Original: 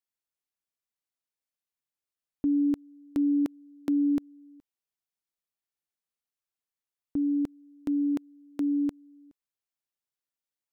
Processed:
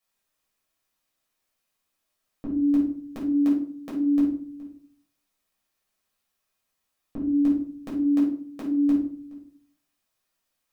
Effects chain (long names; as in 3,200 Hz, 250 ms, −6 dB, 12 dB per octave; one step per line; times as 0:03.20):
low-shelf EQ 250 Hz −4.5 dB
brickwall limiter −32.5 dBFS, peak gain reduction 11 dB
rectangular room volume 460 cubic metres, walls furnished, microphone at 6 metres
level +6 dB